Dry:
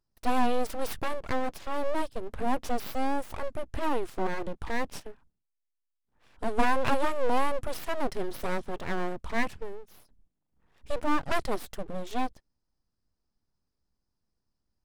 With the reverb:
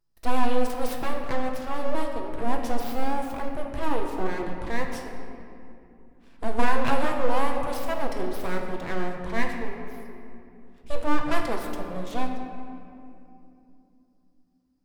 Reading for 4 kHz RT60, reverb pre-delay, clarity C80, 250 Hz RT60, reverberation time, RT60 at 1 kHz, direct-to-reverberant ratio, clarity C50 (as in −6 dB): 1.5 s, 6 ms, 5.5 dB, 4.1 s, 2.8 s, 2.5 s, 2.0 dB, 4.5 dB